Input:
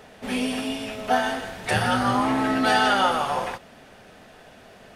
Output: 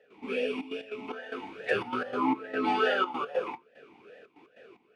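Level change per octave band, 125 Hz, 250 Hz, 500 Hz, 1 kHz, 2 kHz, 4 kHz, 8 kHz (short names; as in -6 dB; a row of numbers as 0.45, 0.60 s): -19.0 dB, -8.5 dB, -3.5 dB, -9.5 dB, -8.0 dB, -11.5 dB, under -20 dB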